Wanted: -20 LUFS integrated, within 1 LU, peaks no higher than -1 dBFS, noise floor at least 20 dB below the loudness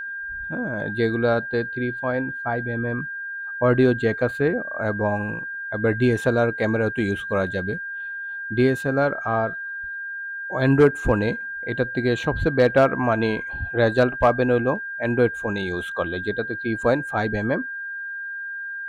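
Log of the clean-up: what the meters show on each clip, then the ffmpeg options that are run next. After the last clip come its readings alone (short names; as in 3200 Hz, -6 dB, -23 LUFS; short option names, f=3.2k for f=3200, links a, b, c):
steady tone 1600 Hz; tone level -29 dBFS; loudness -23.0 LUFS; peak -7.0 dBFS; loudness target -20.0 LUFS
-> -af "bandreject=f=1.6k:w=30"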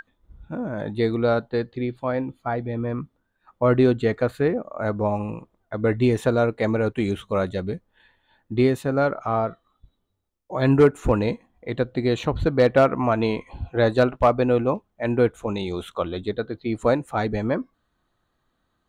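steady tone none; loudness -23.5 LUFS; peak -7.5 dBFS; loudness target -20.0 LUFS
-> -af "volume=3.5dB"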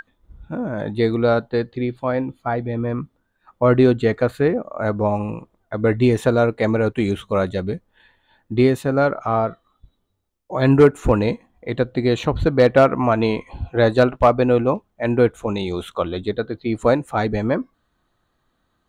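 loudness -20.0 LUFS; peak -4.0 dBFS; noise floor -69 dBFS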